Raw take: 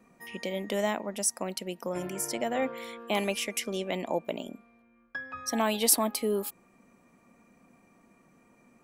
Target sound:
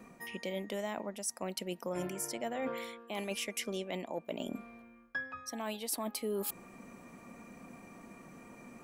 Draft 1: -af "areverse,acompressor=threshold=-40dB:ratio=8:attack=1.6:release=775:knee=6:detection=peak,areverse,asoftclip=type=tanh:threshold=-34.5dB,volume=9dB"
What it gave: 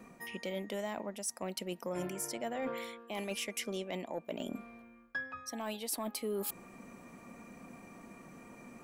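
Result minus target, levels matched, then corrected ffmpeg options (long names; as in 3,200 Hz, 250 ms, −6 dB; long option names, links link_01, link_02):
soft clipping: distortion +21 dB
-af "areverse,acompressor=threshold=-40dB:ratio=8:attack=1.6:release=775:knee=6:detection=peak,areverse,asoftclip=type=tanh:threshold=-23dB,volume=9dB"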